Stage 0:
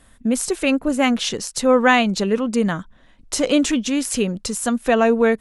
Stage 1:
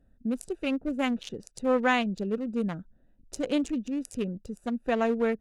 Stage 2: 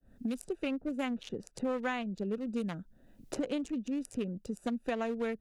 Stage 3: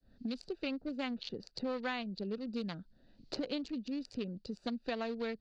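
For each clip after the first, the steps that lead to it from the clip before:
adaptive Wiener filter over 41 samples; level −9 dB
fade in at the beginning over 0.66 s; multiband upward and downward compressor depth 100%; level −7 dB
transistor ladder low-pass 4,700 Hz, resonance 80%; level +8.5 dB

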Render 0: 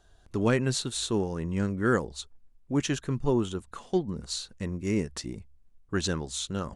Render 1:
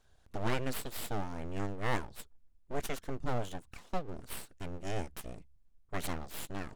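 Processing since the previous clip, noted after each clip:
full-wave rectification
level −5.5 dB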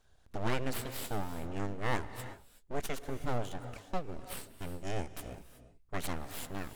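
reverb whose tail is shaped and stops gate 400 ms rising, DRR 11.5 dB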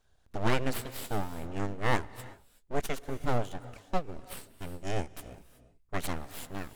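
expander for the loud parts 1.5 to 1, over −43 dBFS
level +6 dB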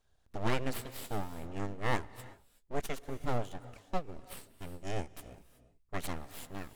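notch filter 1,500 Hz, Q 25
level −4 dB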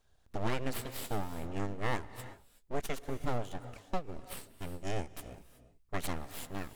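downward compressor 2.5 to 1, threshold −31 dBFS, peak gain reduction 6 dB
level +3 dB

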